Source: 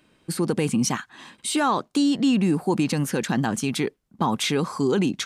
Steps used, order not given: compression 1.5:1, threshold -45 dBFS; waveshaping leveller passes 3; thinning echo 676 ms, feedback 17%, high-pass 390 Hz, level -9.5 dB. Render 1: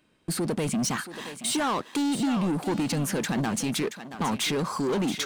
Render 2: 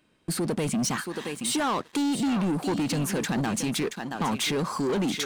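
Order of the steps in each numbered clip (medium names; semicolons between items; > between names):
waveshaping leveller > compression > thinning echo; thinning echo > waveshaping leveller > compression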